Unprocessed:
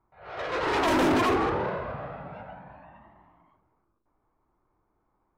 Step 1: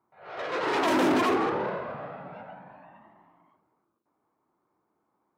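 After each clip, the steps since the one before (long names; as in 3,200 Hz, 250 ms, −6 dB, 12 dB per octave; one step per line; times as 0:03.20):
Chebyshev high-pass filter 200 Hz, order 2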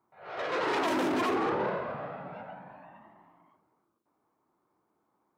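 brickwall limiter −21 dBFS, peak gain reduction 7.5 dB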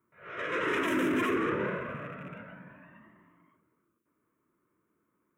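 loose part that buzzes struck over −46 dBFS, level −43 dBFS
phaser with its sweep stopped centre 1,900 Hz, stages 4
level +3.5 dB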